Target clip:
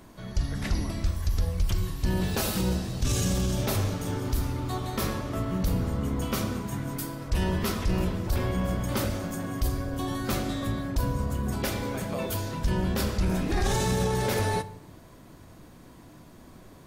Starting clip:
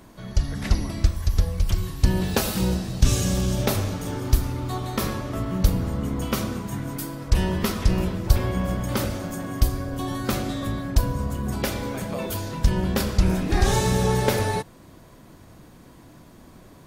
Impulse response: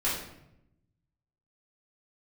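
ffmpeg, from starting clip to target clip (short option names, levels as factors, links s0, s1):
-filter_complex "[0:a]alimiter=limit=0.168:level=0:latency=1:release=11,asplit=2[s0][s1];[1:a]atrim=start_sample=2205[s2];[s1][s2]afir=irnorm=-1:irlink=0,volume=0.075[s3];[s0][s3]amix=inputs=2:normalize=0,volume=0.75"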